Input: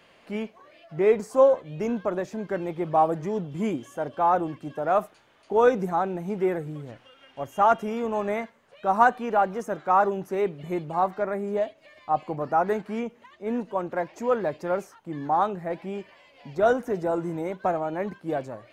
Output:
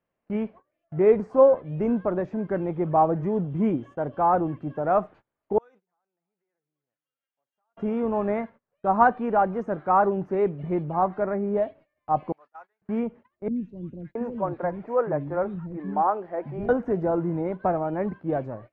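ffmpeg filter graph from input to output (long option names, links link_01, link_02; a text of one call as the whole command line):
ffmpeg -i in.wav -filter_complex "[0:a]asettb=1/sr,asplit=3[link_01][link_02][link_03];[link_01]atrim=end=5.584[link_04];[link_02]atrim=start=5.58:end=7.77,asetpts=PTS-STARTPTS,afade=type=in:duration=0.004:curve=qsin,afade=type=out:start_time=2.186:duration=0.004:curve=qsin,acompressor=threshold=-32dB:ratio=10:attack=3.2:release=140:knee=1:detection=peak,aderivative,aecho=1:1:290:0.15,atrim=end_sample=96579[link_05];[link_03]atrim=start=7.766[link_06];[link_04][link_05]acrossfade=duration=0.004:curve1=hsin:curve2=qsin[link_07];[link_07][link_06]acrossfade=duration=0.004:curve1=qsin:curve2=hsin,asettb=1/sr,asplit=3[link_08][link_09][link_10];[link_08]atrim=end=12.324[link_11];[link_09]atrim=start=12.32:end=12.82,asetpts=PTS-STARTPTS,afade=type=in:duration=0.004:curve=qsin,afade=type=out:start_time=0.496:duration=0.004:curve=qsin,highpass=frequency=1100:poles=1,aderivative,acrusher=bits=6:mode=log:mix=0:aa=0.000001[link_12];[link_10]atrim=start=12.816[link_13];[link_11][link_12]acrossfade=duration=0.004:curve1=hsin:curve2=qsin[link_14];[link_14][link_13]acrossfade=duration=0.004:curve1=qsin:curve2=hsin,asettb=1/sr,asplit=3[link_15][link_16][link_17];[link_15]atrim=end=13.484[link_18];[link_16]atrim=start=13.48:end=16.69,asetpts=PTS-STARTPTS,afade=type=in:duration=0.004:curve=qsin,afade=type=out:start_time=3.206:duration=0.004:curve=qsin,acrossover=split=2700[link_19][link_20];[link_20]acompressor=threshold=-56dB:ratio=4:attack=1:release=60[link_21];[link_19][link_21]amix=inputs=2:normalize=0,acrossover=split=290|3100[link_22][link_23][link_24];[link_24]adelay=80[link_25];[link_23]adelay=670[link_26];[link_22][link_26][link_25]amix=inputs=3:normalize=0,atrim=end_sample=141561[link_27];[link_17]atrim=start=16.686[link_28];[link_18][link_27]acrossfade=duration=0.004:curve1=hsin:curve2=qsin[link_29];[link_29][link_28]acrossfade=duration=0.004:curve1=qsin:curve2=hsin,lowpass=1700,agate=range=-26dB:threshold=-46dB:ratio=16:detection=peak,lowshelf=frequency=230:gain=8.5" out.wav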